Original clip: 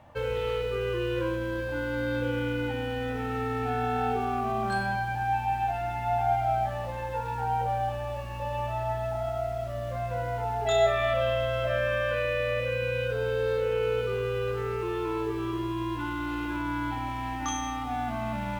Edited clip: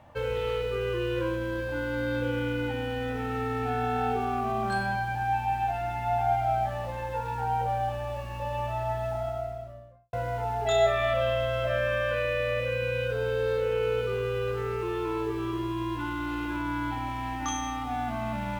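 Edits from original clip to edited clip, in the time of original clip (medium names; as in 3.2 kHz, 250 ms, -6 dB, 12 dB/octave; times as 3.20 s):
9.09–10.13 s: studio fade out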